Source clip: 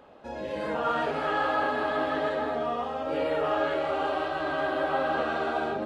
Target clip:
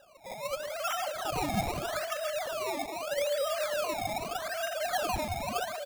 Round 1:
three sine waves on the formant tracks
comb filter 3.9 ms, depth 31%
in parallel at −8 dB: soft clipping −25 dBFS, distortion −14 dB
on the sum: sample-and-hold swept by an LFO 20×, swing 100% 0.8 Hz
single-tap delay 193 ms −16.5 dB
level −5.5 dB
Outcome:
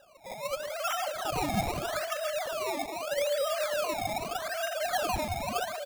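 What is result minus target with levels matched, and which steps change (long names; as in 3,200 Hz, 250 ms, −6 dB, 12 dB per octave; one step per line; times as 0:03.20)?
soft clipping: distortion −7 dB
change: soft clipping −34.5 dBFS, distortion −7 dB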